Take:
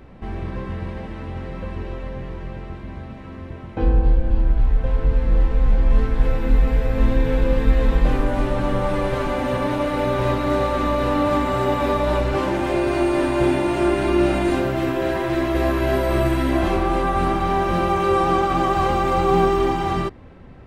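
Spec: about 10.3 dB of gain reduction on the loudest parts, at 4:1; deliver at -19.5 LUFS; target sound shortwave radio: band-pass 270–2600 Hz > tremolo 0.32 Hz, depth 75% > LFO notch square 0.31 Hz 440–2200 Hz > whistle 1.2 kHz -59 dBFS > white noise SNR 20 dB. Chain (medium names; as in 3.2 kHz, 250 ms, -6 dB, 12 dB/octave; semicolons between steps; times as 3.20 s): compression 4:1, threshold -23 dBFS; band-pass 270–2600 Hz; tremolo 0.32 Hz, depth 75%; LFO notch square 0.31 Hz 440–2200 Hz; whistle 1.2 kHz -59 dBFS; white noise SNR 20 dB; trim +16 dB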